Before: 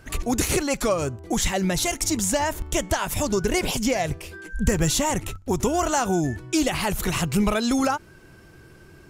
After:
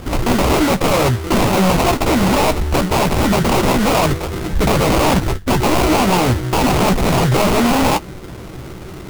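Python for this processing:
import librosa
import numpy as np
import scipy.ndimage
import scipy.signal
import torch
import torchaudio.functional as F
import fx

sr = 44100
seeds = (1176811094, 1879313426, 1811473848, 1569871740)

y = fx.high_shelf(x, sr, hz=10000.0, db=-11.0)
y = fx.sample_hold(y, sr, seeds[0], rate_hz=1700.0, jitter_pct=20)
y = fx.fold_sine(y, sr, drive_db=13, ceiling_db=-11.0)
y = fx.doubler(y, sr, ms=16.0, db=-9.5)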